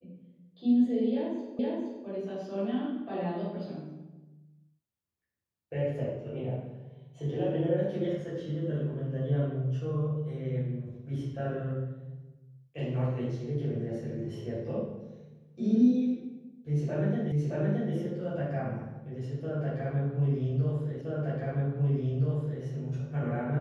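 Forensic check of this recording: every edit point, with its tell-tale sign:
0:01.59: the same again, the last 0.47 s
0:17.32: the same again, the last 0.62 s
0:21.01: the same again, the last 1.62 s

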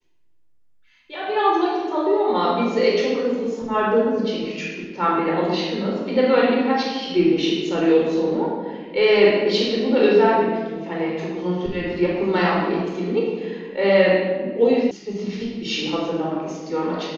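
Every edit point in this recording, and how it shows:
0:14.91: cut off before it has died away

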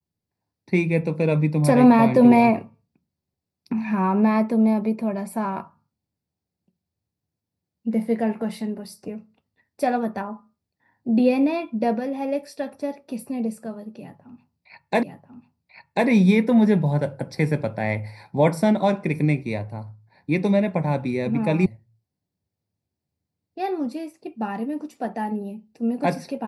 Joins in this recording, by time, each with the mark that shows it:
0:15.03: the same again, the last 1.04 s
0:21.66: cut off before it has died away

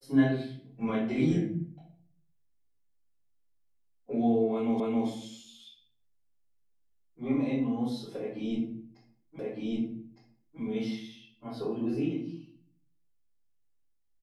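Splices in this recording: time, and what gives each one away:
0:04.80: the same again, the last 0.27 s
0:09.39: the same again, the last 1.21 s

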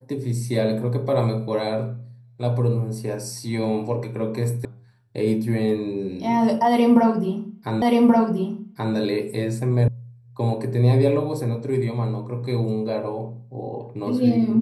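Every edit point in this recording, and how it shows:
0:04.65: cut off before it has died away
0:07.82: the same again, the last 1.13 s
0:09.88: cut off before it has died away

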